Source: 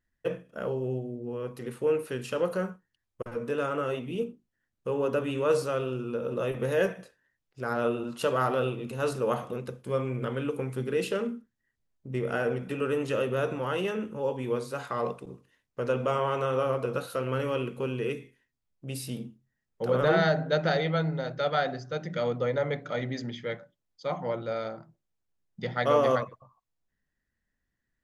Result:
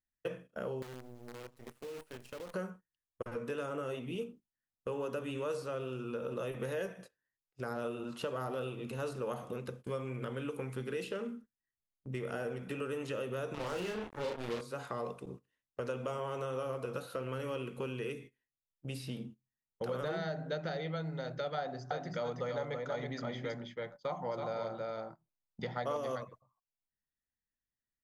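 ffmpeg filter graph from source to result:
-filter_complex "[0:a]asettb=1/sr,asplit=3[s0][s1][s2];[s0]atrim=end=0.824[s3];[s1]atrim=start=0.82:end=2.54,asetpts=PTS-STARTPTS,afade=t=in:d=0.004:c=qsin,afade=t=out:st=1.716:d=0.004:c=qsin,acrusher=bits=6:dc=4:mix=0:aa=0.000001,acompressor=threshold=0.00891:ratio=6:attack=3.2:release=140:knee=1:detection=peak[s4];[s2]atrim=start=2.536[s5];[s3][s4]acrossfade=d=0.004:c1=hsin:c2=qsin[s6];[s6][s5]acrossfade=d=0.004:c1=qsin:c2=hsin,asettb=1/sr,asplit=3[s7][s8][s9];[s7]atrim=end=13.544[s10];[s8]atrim=start=13.54:end=14.61,asetpts=PTS-STARTPTS,afade=t=in:d=0.004:c=qsin,afade=t=out:st=1.066:d=0.004:c=qsin,acrusher=bits=4:mix=0:aa=0.5,asplit=2[s11][s12];[s12]adelay=34,volume=0.708[s13];[s11][s13]amix=inputs=2:normalize=0,atrim=end_sample=47187[s14];[s9]atrim=start=14.606[s15];[s10][s14]acrossfade=d=0.004:c1=hsin:c2=qsin[s16];[s16][s15]acrossfade=d=0.004:c1=qsin:c2=hsin,asettb=1/sr,asplit=3[s17][s18][s19];[s17]atrim=end=21.584[s20];[s18]atrim=start=21.58:end=25.97,asetpts=PTS-STARTPTS,afade=t=in:d=0.004:c=qsin,afade=t=out:st=4.386:d=0.004:c=qsin,equalizer=f=930:t=o:w=1:g=7.5,aecho=1:1:325:0.562,atrim=end_sample=193599[s21];[s19]atrim=start=25.966[s22];[s20][s21]acrossfade=d=0.004:c1=hsin:c2=qsin[s23];[s23][s22]acrossfade=d=0.004:c1=qsin:c2=hsin,agate=range=0.178:threshold=0.00562:ratio=16:detection=peak,acrossover=split=810|4600[s24][s25][s26];[s24]acompressor=threshold=0.0158:ratio=4[s27];[s25]acompressor=threshold=0.00631:ratio=4[s28];[s26]acompressor=threshold=0.00158:ratio=4[s29];[s27][s28][s29]amix=inputs=3:normalize=0,volume=0.841"

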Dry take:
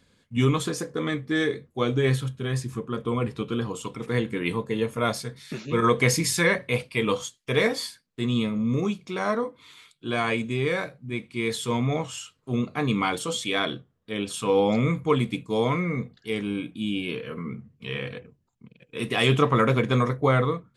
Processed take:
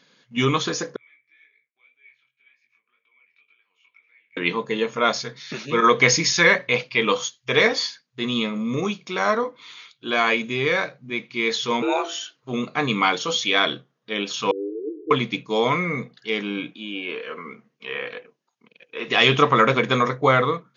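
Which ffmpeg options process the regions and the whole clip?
-filter_complex "[0:a]asettb=1/sr,asplit=3[s0][s1][s2];[s0]atrim=end=0.964[s3];[s1]atrim=start=0.96:end=4.37,asetpts=PTS-STARTPTS,afade=t=in:d=0.004:c=qsin,afade=t=out:st=3.406:d=0.004:c=qsin,acompressor=threshold=0.0141:ratio=8:attack=3.2:release=140:knee=1:detection=peak,bandpass=f=2300:t=q:w=17,flanger=delay=19:depth=4.5:speed=1.9[s4];[s2]atrim=start=4.366[s5];[s3][s4]acrossfade=d=0.004:c1=hsin:c2=qsin[s6];[s6][s5]acrossfade=d=0.004:c1=qsin:c2=hsin,asettb=1/sr,asplit=3[s7][s8][s9];[s7]atrim=end=11.824[s10];[s8]atrim=start=11.82:end=12.36,asetpts=PTS-STARTPTS,afade=t=in:d=0.004:c=qsin,afade=t=out:st=0.536:d=0.004:c=qsin,bandreject=f=60:t=h:w=6,bandreject=f=120:t=h:w=6,bandreject=f=180:t=h:w=6,bandreject=f=240:t=h:w=6,bandreject=f=300:t=h:w=6,bandreject=f=360:t=h:w=6,bandreject=f=420:t=h:w=6,bandreject=f=480:t=h:w=6,afreqshift=200[s11];[s9]atrim=start=12.356[s12];[s10][s11]acrossfade=d=0.004:c1=hsin:c2=qsin[s13];[s13][s12]acrossfade=d=0.004:c1=qsin:c2=hsin,asettb=1/sr,asplit=3[s14][s15][s16];[s14]atrim=end=14.514[s17];[s15]atrim=start=14.51:end=15.11,asetpts=PTS-STARTPTS,afade=t=in:d=0.004:c=qsin,afade=t=out:st=0.596:d=0.004:c=qsin,aeval=exprs='val(0)+0.5*0.0531*sgn(val(0))':c=same,asuperpass=centerf=370:order=12:qfactor=2.6[s18];[s16]atrim=start=15.106[s19];[s17][s18]acrossfade=d=0.004:c1=hsin:c2=qsin[s20];[s20][s19]acrossfade=d=0.004:c1=qsin:c2=hsin,asettb=1/sr,asplit=3[s21][s22][s23];[s21]atrim=end=16.734[s24];[s22]atrim=start=16.73:end=19.08,asetpts=PTS-STARTPTS,afade=t=in:d=0.004:c=qsin,afade=t=out:st=2.346:d=0.004:c=qsin,acrossover=split=2500[s25][s26];[s26]acompressor=threshold=0.00355:ratio=4:attack=1:release=60[s27];[s25][s27]amix=inputs=2:normalize=0,highpass=350[s28];[s23]atrim=start=19.076[s29];[s24][s28]acrossfade=d=0.004:c1=hsin:c2=qsin[s30];[s30][s29]acrossfade=d=0.004:c1=qsin:c2=hsin,afftfilt=real='re*between(b*sr/4096,120,6900)':imag='im*between(b*sr/4096,120,6900)':win_size=4096:overlap=0.75,lowshelf=f=410:g=-11,volume=2.51"

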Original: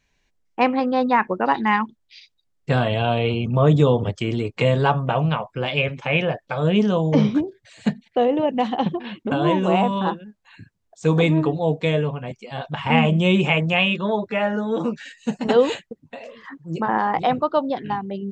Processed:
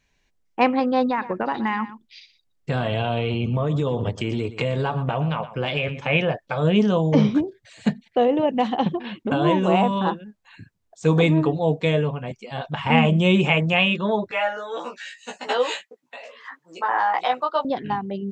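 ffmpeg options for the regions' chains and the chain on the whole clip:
-filter_complex "[0:a]asettb=1/sr,asplit=3[s0][s1][s2];[s0]atrim=end=1.064[s3];[s1]atrim=start=1.06:end=6.07,asetpts=PTS-STARTPTS,afade=t=in:d=0.004:c=qsin,afade=t=out:st=5.006:d=0.004:c=qsin,acompressor=threshold=0.112:ratio=6:attack=3.2:release=140:knee=1:detection=peak,aecho=1:1:119:0.188,atrim=end_sample=220941[s4];[s2]atrim=start=6.066[s5];[s3][s4]acrossfade=d=0.004:c1=hsin:c2=qsin[s6];[s6][s5]acrossfade=d=0.004:c1=qsin:c2=hsin,asettb=1/sr,asplit=3[s7][s8][s9];[s7]atrim=end=14.314[s10];[s8]atrim=start=14.31:end=17.65,asetpts=PTS-STARTPTS,afade=t=in:d=0.004:c=qsin,afade=t=out:st=3.336:d=0.004:c=qsin,highpass=780,asplit=2[s11][s12];[s12]adelay=16,volume=0.794[s13];[s11][s13]amix=inputs=2:normalize=0,atrim=end_sample=147294[s14];[s9]atrim=start=17.646[s15];[s10][s14]acrossfade=d=0.004:c1=hsin:c2=qsin[s16];[s16][s15]acrossfade=d=0.004:c1=qsin:c2=hsin"

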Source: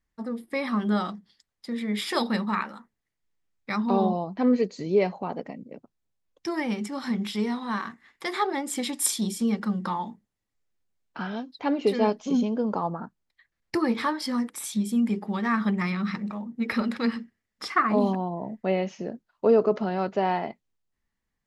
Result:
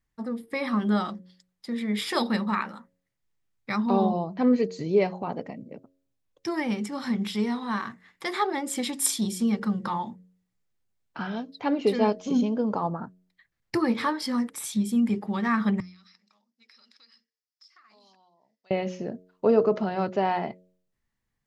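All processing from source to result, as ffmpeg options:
-filter_complex "[0:a]asettb=1/sr,asplit=3[s0][s1][s2];[s0]atrim=end=15.804[s3];[s1]atrim=start=15.8:end=18.71,asetpts=PTS-STARTPTS,afade=t=in:d=0.004:c=qsin,afade=t=out:st=2.906:d=0.004:c=qsin,bandpass=f=5100:t=q:w=4.8,acompressor=threshold=0.002:ratio=5:attack=3.2:release=140:knee=1:detection=peak[s4];[s2]atrim=start=18.706[s5];[s3][s4]acrossfade=d=0.004:c1=hsin:c2=qsin[s6];[s6][s5]acrossfade=d=0.004:c1=qsin:c2=hsin,equalizer=f=120:t=o:w=0.57:g=7.5,bandreject=f=91.34:t=h:w=4,bandreject=f=182.68:t=h:w=4,bandreject=f=274.02:t=h:w=4,bandreject=f=365.36:t=h:w=4,bandreject=f=456.7:t=h:w=4,bandreject=f=548.04:t=h:w=4,bandreject=f=639.38:t=h:w=4"

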